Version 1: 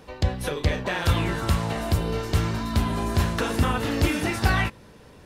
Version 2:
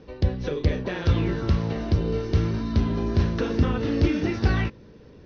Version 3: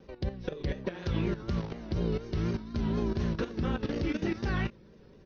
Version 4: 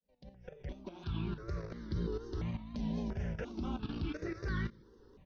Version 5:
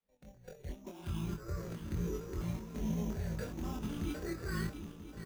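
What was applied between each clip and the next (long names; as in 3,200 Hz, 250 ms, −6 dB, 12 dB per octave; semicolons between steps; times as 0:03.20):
Chebyshev low-pass filter 6,000 Hz, order 6; low shelf with overshoot 570 Hz +7.5 dB, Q 1.5; level −5.5 dB
comb filter 5.3 ms, depth 35%; output level in coarse steps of 13 dB; pitch vibrato 4.1 Hz 78 cents; level −3 dB
fade in at the beginning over 1.41 s; in parallel at −1.5 dB: brickwall limiter −29 dBFS, peak gain reduction 11.5 dB; on the sum: step-sequenced phaser 2.9 Hz 360–2,600 Hz; level −7 dB
feedback delay that plays each chunk backwards 492 ms, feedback 61%, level −9 dB; decimation without filtering 7×; double-tracking delay 24 ms −3 dB; level −2.5 dB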